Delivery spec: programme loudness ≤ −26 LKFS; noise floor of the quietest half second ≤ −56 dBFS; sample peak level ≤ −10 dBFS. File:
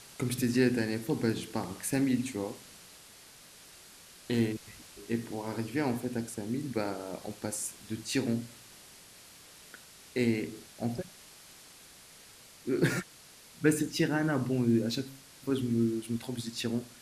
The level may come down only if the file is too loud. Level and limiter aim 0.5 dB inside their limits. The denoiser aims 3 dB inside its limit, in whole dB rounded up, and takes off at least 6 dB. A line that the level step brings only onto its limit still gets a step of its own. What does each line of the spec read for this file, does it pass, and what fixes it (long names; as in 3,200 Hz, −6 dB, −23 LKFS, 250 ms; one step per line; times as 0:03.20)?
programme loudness −32.0 LKFS: in spec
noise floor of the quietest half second −54 dBFS: out of spec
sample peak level −11.0 dBFS: in spec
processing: broadband denoise 6 dB, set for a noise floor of −54 dBFS